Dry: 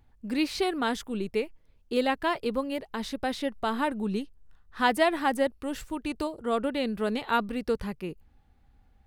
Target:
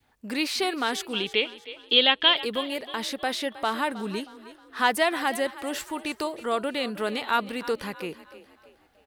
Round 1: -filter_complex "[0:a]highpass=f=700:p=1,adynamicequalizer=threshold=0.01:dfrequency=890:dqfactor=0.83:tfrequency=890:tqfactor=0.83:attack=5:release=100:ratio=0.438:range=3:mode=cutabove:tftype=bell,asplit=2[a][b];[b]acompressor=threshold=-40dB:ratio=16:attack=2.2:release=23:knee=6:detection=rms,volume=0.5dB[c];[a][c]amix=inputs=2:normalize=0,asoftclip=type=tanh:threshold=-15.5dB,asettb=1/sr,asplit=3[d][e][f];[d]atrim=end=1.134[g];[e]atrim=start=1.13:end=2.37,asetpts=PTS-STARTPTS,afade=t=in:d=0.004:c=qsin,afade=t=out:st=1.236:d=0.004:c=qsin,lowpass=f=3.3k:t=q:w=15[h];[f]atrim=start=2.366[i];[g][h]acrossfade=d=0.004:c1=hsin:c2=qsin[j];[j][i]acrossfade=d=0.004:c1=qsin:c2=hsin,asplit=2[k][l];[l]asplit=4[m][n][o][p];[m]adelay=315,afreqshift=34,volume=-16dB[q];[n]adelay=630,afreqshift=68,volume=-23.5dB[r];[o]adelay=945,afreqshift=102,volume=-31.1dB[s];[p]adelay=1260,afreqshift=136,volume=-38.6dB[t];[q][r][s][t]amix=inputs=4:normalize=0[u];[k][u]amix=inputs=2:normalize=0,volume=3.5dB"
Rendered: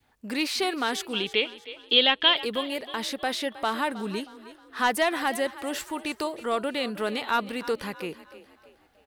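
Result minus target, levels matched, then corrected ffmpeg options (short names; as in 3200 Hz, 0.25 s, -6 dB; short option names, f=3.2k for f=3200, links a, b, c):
soft clip: distortion +14 dB
-filter_complex "[0:a]highpass=f=700:p=1,adynamicequalizer=threshold=0.01:dfrequency=890:dqfactor=0.83:tfrequency=890:tqfactor=0.83:attack=5:release=100:ratio=0.438:range=3:mode=cutabove:tftype=bell,asplit=2[a][b];[b]acompressor=threshold=-40dB:ratio=16:attack=2.2:release=23:knee=6:detection=rms,volume=0.5dB[c];[a][c]amix=inputs=2:normalize=0,asoftclip=type=tanh:threshold=-6.5dB,asettb=1/sr,asplit=3[d][e][f];[d]atrim=end=1.134[g];[e]atrim=start=1.13:end=2.37,asetpts=PTS-STARTPTS,afade=t=in:d=0.004:c=qsin,afade=t=out:st=1.236:d=0.004:c=qsin,lowpass=f=3.3k:t=q:w=15[h];[f]atrim=start=2.366[i];[g][h]acrossfade=d=0.004:c1=hsin:c2=qsin[j];[j][i]acrossfade=d=0.004:c1=qsin:c2=hsin,asplit=2[k][l];[l]asplit=4[m][n][o][p];[m]adelay=315,afreqshift=34,volume=-16dB[q];[n]adelay=630,afreqshift=68,volume=-23.5dB[r];[o]adelay=945,afreqshift=102,volume=-31.1dB[s];[p]adelay=1260,afreqshift=136,volume=-38.6dB[t];[q][r][s][t]amix=inputs=4:normalize=0[u];[k][u]amix=inputs=2:normalize=0,volume=3.5dB"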